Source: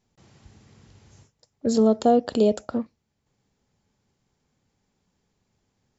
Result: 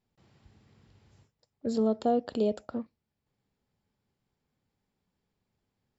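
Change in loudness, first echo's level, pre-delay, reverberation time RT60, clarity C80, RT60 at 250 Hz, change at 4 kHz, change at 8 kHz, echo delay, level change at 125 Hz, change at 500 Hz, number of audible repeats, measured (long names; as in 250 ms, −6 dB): −8.0 dB, no echo audible, no reverb audible, no reverb audible, no reverb audible, no reverb audible, −9.5 dB, can't be measured, no echo audible, −8.0 dB, −8.0 dB, no echo audible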